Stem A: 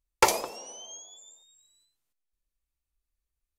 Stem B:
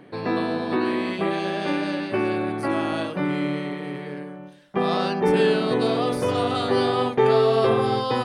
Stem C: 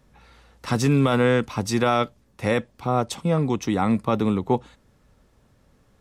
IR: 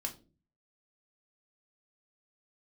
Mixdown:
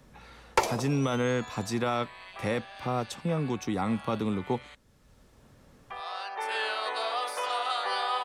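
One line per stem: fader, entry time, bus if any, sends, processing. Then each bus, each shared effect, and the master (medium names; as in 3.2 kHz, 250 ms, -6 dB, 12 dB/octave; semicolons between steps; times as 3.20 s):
0.0 dB, 0.35 s, no send, low-pass 3.5 kHz 6 dB/octave
-2.5 dB, 1.15 s, muted 4.75–5.90 s, no send, high-pass 740 Hz 24 dB/octave; auto duck -14 dB, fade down 1.65 s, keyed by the third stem
-8.0 dB, 0.00 s, no send, none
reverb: none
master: three bands compressed up and down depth 40%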